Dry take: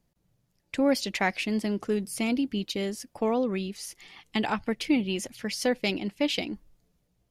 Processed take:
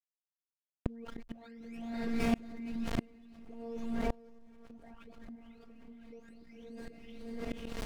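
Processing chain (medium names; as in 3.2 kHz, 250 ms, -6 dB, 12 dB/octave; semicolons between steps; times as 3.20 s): delay that grows with frequency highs late, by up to 648 ms; wide varispeed 0.93×; robot voice 231 Hz; harmonic-percussive split harmonic -8 dB; level-controlled noise filter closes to 890 Hz, open at -32.5 dBFS; on a send: echo that smears into a reverb 538 ms, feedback 45%, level -4 dB; on the sum: small samples zeroed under -44.5 dBFS; in parallel at +2.5 dB: compression 6:1, threshold -43 dBFS, peak gain reduction 13 dB; on the sum: tilt EQ -4 dB/octave; inverted gate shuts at -25 dBFS, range -35 dB; swell ahead of each attack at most 32 dB/s; trim +9 dB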